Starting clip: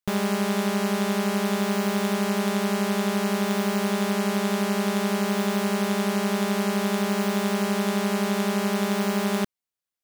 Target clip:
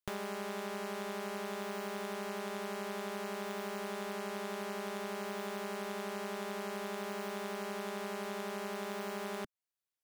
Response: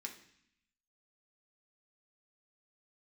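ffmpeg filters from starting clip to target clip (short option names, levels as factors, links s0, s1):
-filter_complex "[0:a]equalizer=f=190:t=o:w=0.51:g=-10,acrossover=split=1100|2500[s0][s1][s2];[s0]acompressor=threshold=0.02:ratio=4[s3];[s1]acompressor=threshold=0.00794:ratio=4[s4];[s2]acompressor=threshold=0.00631:ratio=4[s5];[s3][s4][s5]amix=inputs=3:normalize=0,volume=0.562"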